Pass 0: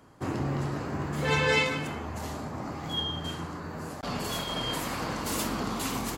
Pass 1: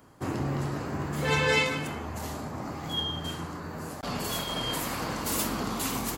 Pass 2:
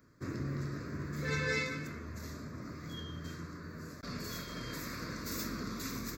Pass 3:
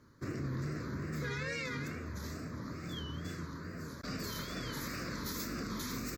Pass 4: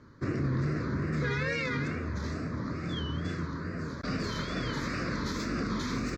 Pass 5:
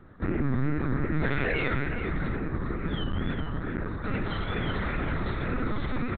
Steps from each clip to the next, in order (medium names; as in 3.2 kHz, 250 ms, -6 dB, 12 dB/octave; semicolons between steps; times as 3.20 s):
treble shelf 11 kHz +9.5 dB
static phaser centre 3 kHz, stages 6; trim -6 dB
peak limiter -31.5 dBFS, peak gain reduction 9.5 dB; wow and flutter 130 cents; trim +2 dB
distance through air 130 m; trim +8 dB
echo from a far wall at 69 m, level -7 dB; LPC vocoder at 8 kHz pitch kept; trim +3.5 dB